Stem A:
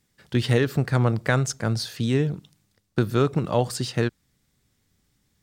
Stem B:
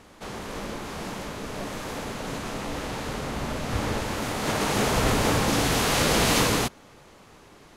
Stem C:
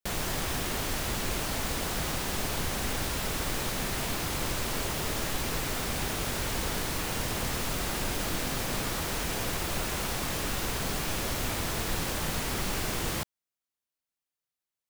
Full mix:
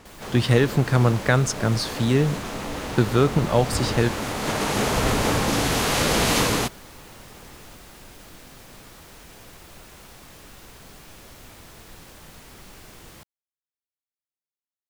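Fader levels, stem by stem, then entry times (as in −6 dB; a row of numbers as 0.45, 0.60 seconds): +2.5, +1.0, −14.0 decibels; 0.00, 0.00, 0.00 seconds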